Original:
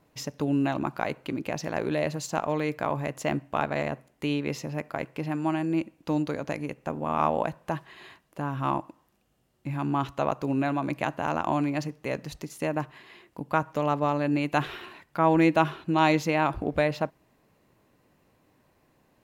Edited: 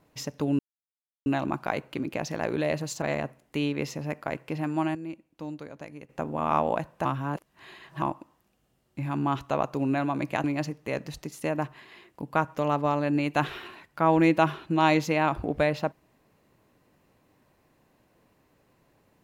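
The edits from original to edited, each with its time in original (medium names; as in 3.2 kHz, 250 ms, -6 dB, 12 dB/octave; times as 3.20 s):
0.59 s: insert silence 0.67 s
2.35–3.70 s: delete
5.63–6.77 s: gain -10.5 dB
7.73–8.70 s: reverse
11.12–11.62 s: delete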